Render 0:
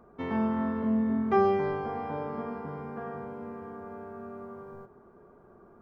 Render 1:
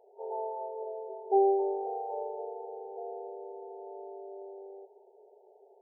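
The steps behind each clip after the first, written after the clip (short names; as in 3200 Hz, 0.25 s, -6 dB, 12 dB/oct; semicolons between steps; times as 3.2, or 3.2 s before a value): FFT band-pass 370–920 Hz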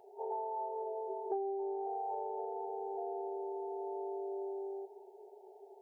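bell 580 Hz -13.5 dB 0.66 oct; compressor 12:1, threshold -44 dBFS, peak gain reduction 20 dB; notch comb 490 Hz; gain +10.5 dB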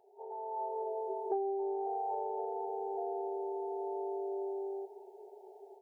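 AGC gain up to 10 dB; gain -7.5 dB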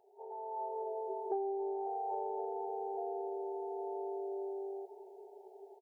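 echo 0.807 s -18 dB; gain -2 dB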